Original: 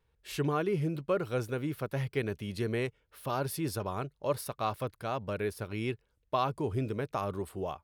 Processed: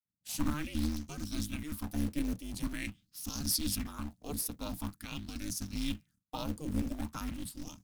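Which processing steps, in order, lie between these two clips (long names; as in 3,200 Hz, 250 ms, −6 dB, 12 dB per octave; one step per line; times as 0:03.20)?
sub-octave generator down 1 octave, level +2 dB
downward expander −54 dBFS
drawn EQ curve 160 Hz 0 dB, 240 Hz −26 dB, 2,100 Hz −9 dB, 6,500 Hz +10 dB
floating-point word with a short mantissa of 2 bits
ring modulation 150 Hz
auto-filter bell 0.45 Hz 440–6,200 Hz +13 dB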